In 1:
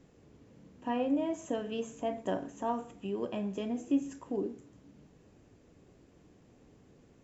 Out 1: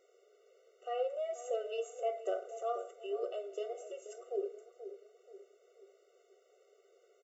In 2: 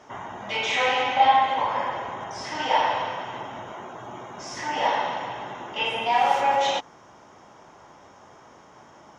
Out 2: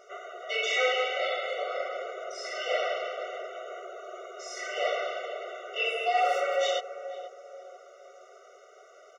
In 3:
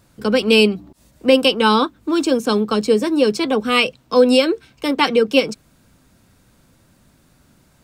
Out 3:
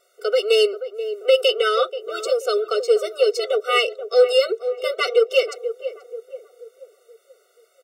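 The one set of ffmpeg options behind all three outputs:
ffmpeg -i in.wav -filter_complex "[0:a]asplit=2[link_01][link_02];[link_02]adelay=482,lowpass=frequency=840:poles=1,volume=-10dB,asplit=2[link_03][link_04];[link_04]adelay=482,lowpass=frequency=840:poles=1,volume=0.49,asplit=2[link_05][link_06];[link_06]adelay=482,lowpass=frequency=840:poles=1,volume=0.49,asplit=2[link_07][link_08];[link_08]adelay=482,lowpass=frequency=840:poles=1,volume=0.49,asplit=2[link_09][link_10];[link_10]adelay=482,lowpass=frequency=840:poles=1,volume=0.49[link_11];[link_03][link_05][link_07][link_09][link_11]amix=inputs=5:normalize=0[link_12];[link_01][link_12]amix=inputs=2:normalize=0,asoftclip=type=tanh:threshold=-4dB,afftfilt=real='re*eq(mod(floor(b*sr/1024/380),2),1)':imag='im*eq(mod(floor(b*sr/1024/380),2),1)':win_size=1024:overlap=0.75" out.wav

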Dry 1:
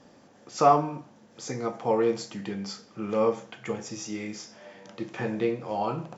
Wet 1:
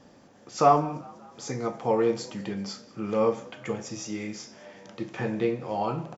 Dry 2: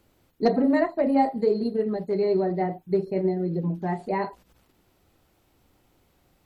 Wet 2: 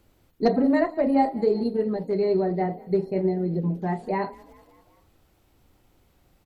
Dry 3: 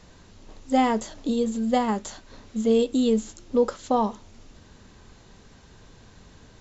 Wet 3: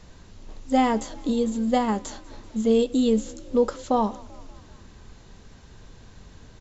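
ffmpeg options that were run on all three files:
ffmpeg -i in.wav -filter_complex "[0:a]lowshelf=frequency=85:gain=7,asplit=2[link_01][link_02];[link_02]asplit=4[link_03][link_04][link_05][link_06];[link_03]adelay=193,afreqshift=32,volume=-23.5dB[link_07];[link_04]adelay=386,afreqshift=64,volume=-27.9dB[link_08];[link_05]adelay=579,afreqshift=96,volume=-32.4dB[link_09];[link_06]adelay=772,afreqshift=128,volume=-36.8dB[link_10];[link_07][link_08][link_09][link_10]amix=inputs=4:normalize=0[link_11];[link_01][link_11]amix=inputs=2:normalize=0" out.wav

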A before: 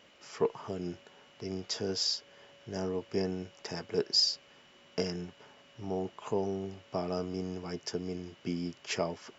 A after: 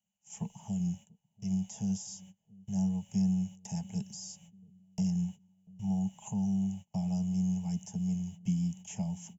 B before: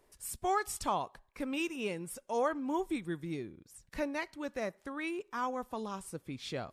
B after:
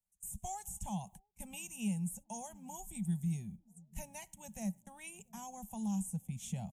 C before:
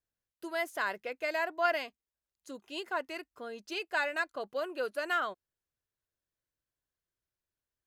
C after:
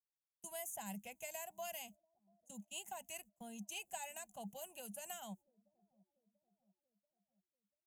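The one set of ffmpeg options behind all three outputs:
ffmpeg -i in.wav -filter_complex "[0:a]agate=range=-27dB:threshold=-49dB:ratio=16:detection=peak,acrossover=split=220|3000[link_01][link_02][link_03];[link_02]acompressor=threshold=-35dB:ratio=6[link_04];[link_01][link_04][link_03]amix=inputs=3:normalize=0,firequalizer=gain_entry='entry(130,0);entry(200,9);entry(280,-28);entry(480,-23);entry(820,-4);entry(1200,-30);entry(1900,-19);entry(2900,-8);entry(4500,-22);entry(6500,8)':delay=0.05:min_phase=1,acrossover=split=610|1600[link_05][link_06][link_07];[link_05]aecho=1:1:688|1376|2064|2752:0.0668|0.0361|0.0195|0.0105[link_08];[link_07]alimiter=level_in=15.5dB:limit=-24dB:level=0:latency=1:release=110,volume=-15.5dB[link_09];[link_08][link_06][link_09]amix=inputs=3:normalize=0,volume=4dB" out.wav

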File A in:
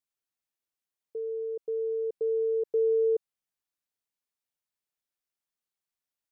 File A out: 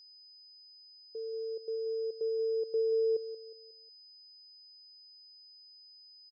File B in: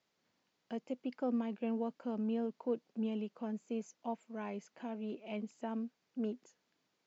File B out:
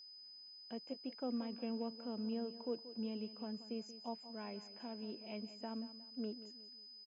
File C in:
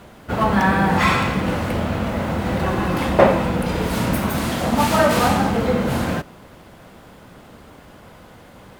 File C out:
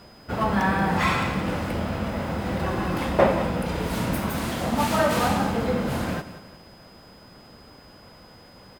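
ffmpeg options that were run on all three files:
ffmpeg -i in.wav -af "aecho=1:1:181|362|543|724:0.2|0.0778|0.0303|0.0118,aeval=exprs='val(0)+0.00398*sin(2*PI*5000*n/s)':channel_layout=same,volume=-5.5dB" out.wav

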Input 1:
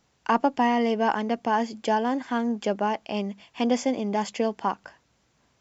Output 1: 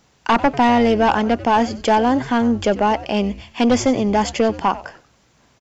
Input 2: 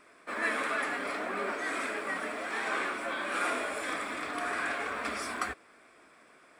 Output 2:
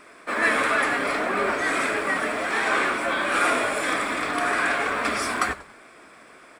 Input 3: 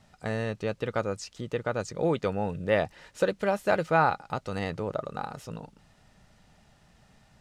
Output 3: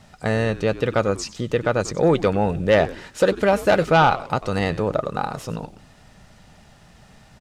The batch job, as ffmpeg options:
ffmpeg -i in.wav -filter_complex "[0:a]aeval=exprs='0.376*sin(PI/2*2*val(0)/0.376)':channel_layout=same,asplit=4[link_01][link_02][link_03][link_04];[link_02]adelay=94,afreqshift=-140,volume=-16.5dB[link_05];[link_03]adelay=188,afreqshift=-280,volume=-26.4dB[link_06];[link_04]adelay=282,afreqshift=-420,volume=-36.3dB[link_07];[link_01][link_05][link_06][link_07]amix=inputs=4:normalize=0" out.wav

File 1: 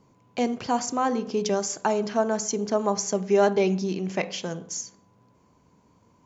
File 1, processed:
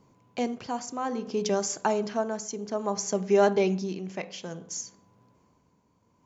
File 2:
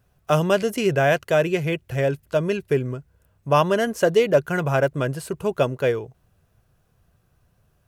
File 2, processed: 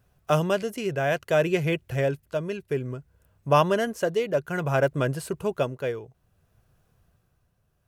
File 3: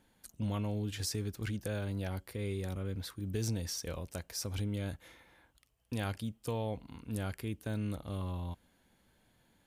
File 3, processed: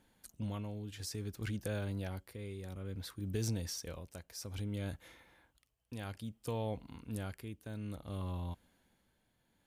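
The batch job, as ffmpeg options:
ffmpeg -i in.wav -af "tremolo=f=0.59:d=0.55,volume=-1dB" out.wav

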